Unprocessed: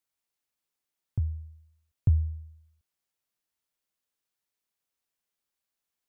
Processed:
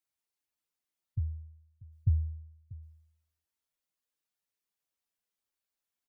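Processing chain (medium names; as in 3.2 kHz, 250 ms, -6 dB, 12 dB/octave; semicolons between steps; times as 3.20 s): spectral contrast enhancement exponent 1.5; delay 639 ms -19.5 dB; trim -4 dB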